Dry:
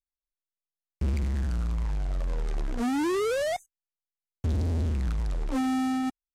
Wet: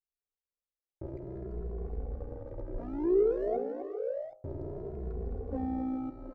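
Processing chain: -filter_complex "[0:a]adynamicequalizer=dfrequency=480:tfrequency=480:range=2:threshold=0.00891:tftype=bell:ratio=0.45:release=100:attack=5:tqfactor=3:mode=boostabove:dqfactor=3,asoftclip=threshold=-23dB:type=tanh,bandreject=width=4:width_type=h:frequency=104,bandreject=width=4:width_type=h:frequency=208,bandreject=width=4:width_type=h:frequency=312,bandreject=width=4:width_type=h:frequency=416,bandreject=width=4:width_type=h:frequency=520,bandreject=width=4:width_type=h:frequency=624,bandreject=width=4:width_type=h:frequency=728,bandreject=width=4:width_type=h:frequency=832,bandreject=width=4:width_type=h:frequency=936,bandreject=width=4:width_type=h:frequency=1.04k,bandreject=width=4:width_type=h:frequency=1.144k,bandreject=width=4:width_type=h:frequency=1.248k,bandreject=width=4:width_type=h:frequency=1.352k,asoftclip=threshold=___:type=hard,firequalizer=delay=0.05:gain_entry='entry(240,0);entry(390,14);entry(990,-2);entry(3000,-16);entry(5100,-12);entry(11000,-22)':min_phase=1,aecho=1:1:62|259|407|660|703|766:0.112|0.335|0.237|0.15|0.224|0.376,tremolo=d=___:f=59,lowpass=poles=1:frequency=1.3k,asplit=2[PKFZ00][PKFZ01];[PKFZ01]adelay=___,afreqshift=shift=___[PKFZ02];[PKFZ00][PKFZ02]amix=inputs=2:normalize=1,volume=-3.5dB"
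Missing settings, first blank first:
-28.5dB, 0.621, 2.4, 0.59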